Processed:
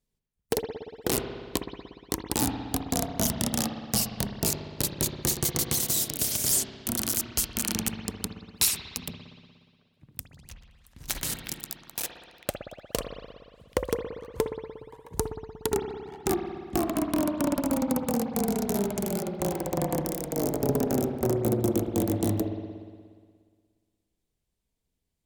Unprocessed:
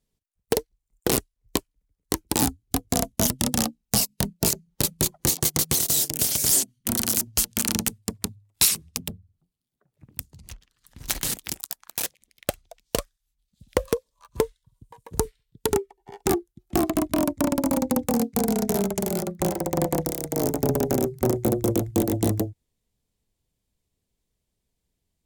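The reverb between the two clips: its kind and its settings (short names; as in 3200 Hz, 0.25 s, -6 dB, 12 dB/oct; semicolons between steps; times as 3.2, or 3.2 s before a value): spring tank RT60 1.8 s, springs 59 ms, chirp 25 ms, DRR 4.5 dB; gain -4.5 dB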